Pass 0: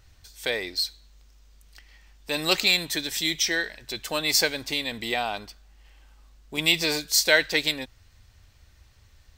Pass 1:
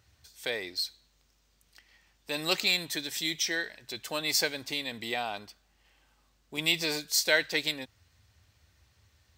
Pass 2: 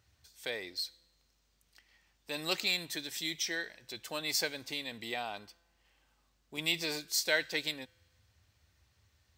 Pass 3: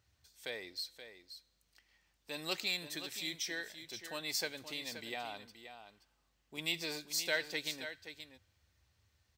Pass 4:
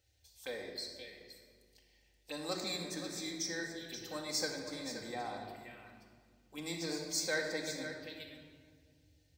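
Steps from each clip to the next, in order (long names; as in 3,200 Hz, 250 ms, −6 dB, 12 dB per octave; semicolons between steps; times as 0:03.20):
high-pass filter 70 Hz 24 dB per octave; level −5.5 dB
tuned comb filter 170 Hz, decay 1.3 s, mix 30%; level −2 dB
single-tap delay 526 ms −10.5 dB; level −4.5 dB
phaser swept by the level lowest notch 180 Hz, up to 2,900 Hz, full sweep at −42 dBFS; rectangular room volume 2,700 cubic metres, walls mixed, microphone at 2.1 metres; level +1 dB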